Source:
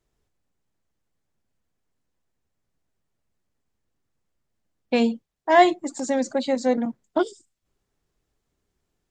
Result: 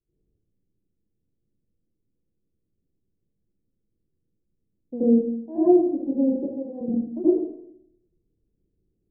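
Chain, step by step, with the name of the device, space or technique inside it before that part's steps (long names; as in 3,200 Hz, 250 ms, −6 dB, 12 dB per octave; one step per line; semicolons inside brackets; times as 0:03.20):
0:06.36–0:06.81: high-pass filter 1,100 Hz 6 dB per octave
next room (low-pass filter 430 Hz 24 dB per octave; convolution reverb RT60 0.70 s, pre-delay 70 ms, DRR −11 dB)
level −9 dB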